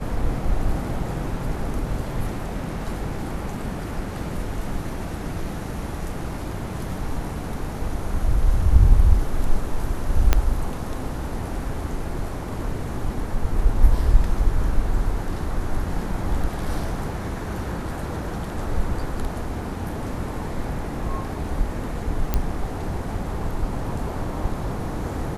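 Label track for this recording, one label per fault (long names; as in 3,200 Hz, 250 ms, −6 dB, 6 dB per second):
10.330000	10.330000	click −3 dBFS
22.340000	22.340000	click −8 dBFS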